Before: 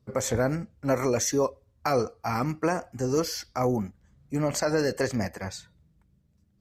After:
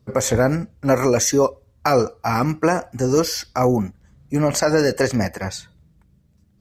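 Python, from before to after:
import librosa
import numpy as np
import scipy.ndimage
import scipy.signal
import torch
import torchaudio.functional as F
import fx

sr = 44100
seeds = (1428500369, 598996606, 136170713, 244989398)

y = x * 10.0 ** (8.0 / 20.0)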